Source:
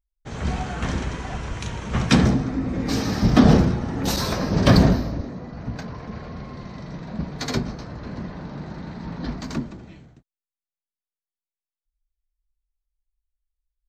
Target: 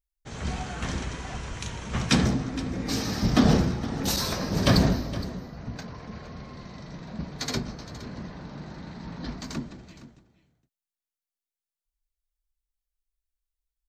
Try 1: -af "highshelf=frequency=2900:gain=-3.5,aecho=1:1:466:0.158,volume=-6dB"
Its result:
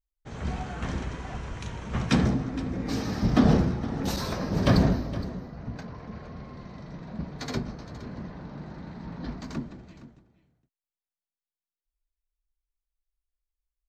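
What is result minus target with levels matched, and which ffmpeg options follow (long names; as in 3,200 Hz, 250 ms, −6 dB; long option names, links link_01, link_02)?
8,000 Hz band −8.0 dB
-af "highshelf=frequency=2900:gain=7.5,aecho=1:1:466:0.158,volume=-6dB"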